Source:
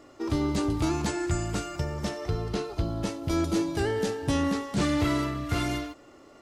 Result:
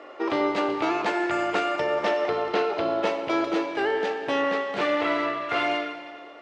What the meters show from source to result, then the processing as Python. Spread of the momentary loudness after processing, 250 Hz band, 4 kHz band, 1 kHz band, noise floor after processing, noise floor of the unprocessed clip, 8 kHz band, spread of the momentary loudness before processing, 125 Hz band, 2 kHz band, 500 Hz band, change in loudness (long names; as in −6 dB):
2 LU, −1.5 dB, +3.0 dB, +9.0 dB, −43 dBFS, −53 dBFS, below −10 dB, 6 LU, −18.0 dB, +9.0 dB, +7.0 dB, +3.5 dB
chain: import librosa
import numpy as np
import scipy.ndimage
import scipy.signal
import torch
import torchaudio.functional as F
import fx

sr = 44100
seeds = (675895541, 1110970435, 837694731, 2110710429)

y = scipy.signal.sosfilt(scipy.signal.cheby1(2, 1.0, [510.0, 2600.0], 'bandpass', fs=sr, output='sos'), x)
y = fx.rider(y, sr, range_db=10, speed_s=0.5)
y = fx.rev_schroeder(y, sr, rt60_s=2.0, comb_ms=29, drr_db=8.0)
y = y * 10.0 ** (9.0 / 20.0)